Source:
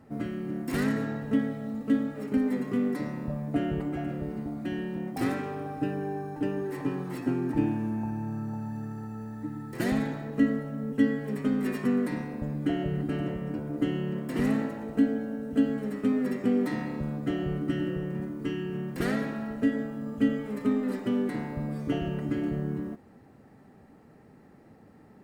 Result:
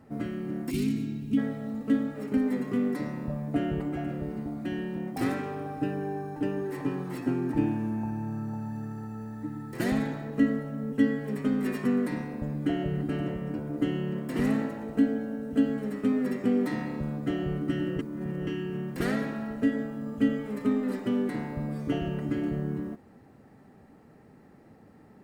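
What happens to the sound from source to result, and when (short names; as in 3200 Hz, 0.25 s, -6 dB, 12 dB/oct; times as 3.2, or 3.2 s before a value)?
0.7–1.37 spectral gain 430–2100 Hz -20 dB
17.99–18.47 reverse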